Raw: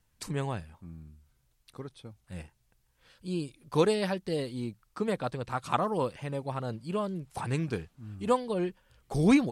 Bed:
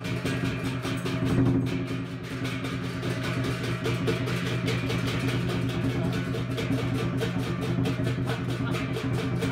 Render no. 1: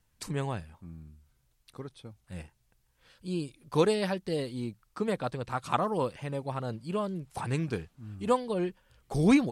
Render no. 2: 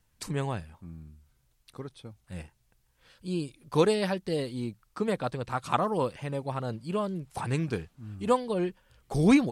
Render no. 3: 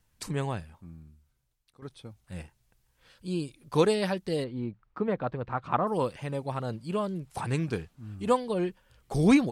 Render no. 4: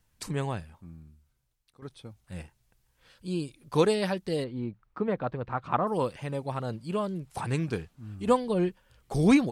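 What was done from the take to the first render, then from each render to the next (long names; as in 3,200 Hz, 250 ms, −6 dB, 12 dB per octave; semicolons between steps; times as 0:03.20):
no processing that can be heard
level +1.5 dB
0:00.51–0:01.82: fade out, to −15.5 dB; 0:04.44–0:05.87: low-pass filter 1,900 Hz
0:08.28–0:08.69: low-shelf EQ 220 Hz +7.5 dB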